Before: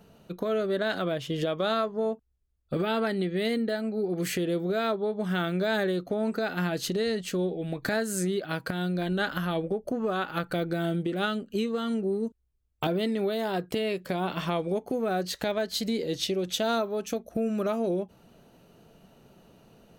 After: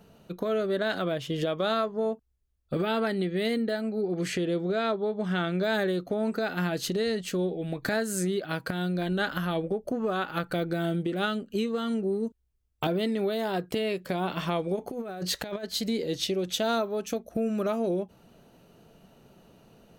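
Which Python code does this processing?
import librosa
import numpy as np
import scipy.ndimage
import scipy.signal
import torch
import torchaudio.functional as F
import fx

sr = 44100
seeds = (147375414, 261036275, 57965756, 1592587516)

y = fx.lowpass(x, sr, hz=7400.0, slope=12, at=(4.01, 5.63))
y = fx.over_compress(y, sr, threshold_db=-32.0, ratio=-0.5, at=(14.75, 15.63), fade=0.02)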